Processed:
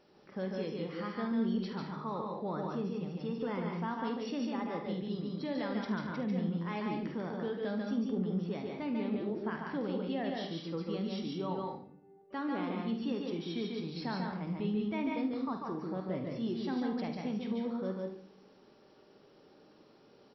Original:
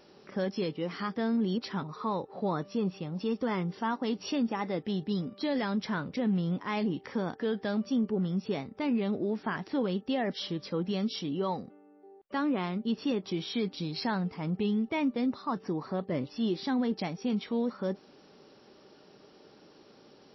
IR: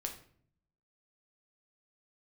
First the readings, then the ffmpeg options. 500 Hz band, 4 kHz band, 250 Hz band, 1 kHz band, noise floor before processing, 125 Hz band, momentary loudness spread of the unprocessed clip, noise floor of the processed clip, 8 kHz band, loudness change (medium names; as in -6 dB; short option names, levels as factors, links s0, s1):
-4.0 dB, -7.0 dB, -4.0 dB, -4.0 dB, -58 dBFS, -4.0 dB, 5 LU, -61 dBFS, no reading, -4.0 dB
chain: -filter_complex "[0:a]highshelf=f=4500:g=-7.5,aecho=1:1:48|74:0.316|0.251,asplit=2[s0][s1];[1:a]atrim=start_sample=2205,adelay=144[s2];[s1][s2]afir=irnorm=-1:irlink=0,volume=0.891[s3];[s0][s3]amix=inputs=2:normalize=0,volume=0.447"